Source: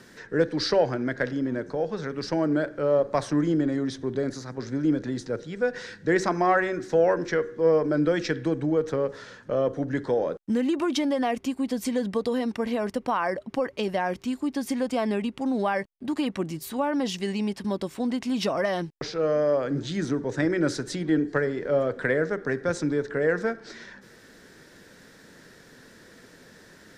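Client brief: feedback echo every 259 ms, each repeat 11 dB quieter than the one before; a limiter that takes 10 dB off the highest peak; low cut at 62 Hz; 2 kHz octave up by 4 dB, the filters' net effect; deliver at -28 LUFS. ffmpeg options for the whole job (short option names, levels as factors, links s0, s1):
-af "highpass=62,equalizer=f=2000:t=o:g=5,alimiter=limit=0.133:level=0:latency=1,aecho=1:1:259|518|777:0.282|0.0789|0.0221"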